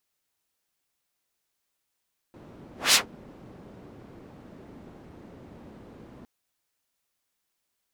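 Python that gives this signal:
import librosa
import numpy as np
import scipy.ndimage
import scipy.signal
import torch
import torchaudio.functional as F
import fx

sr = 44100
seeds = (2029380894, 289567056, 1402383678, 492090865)

y = fx.whoosh(sr, seeds[0], length_s=3.91, peak_s=0.6, rise_s=0.19, fall_s=0.13, ends_hz=250.0, peak_hz=5100.0, q=0.82, swell_db=30.5)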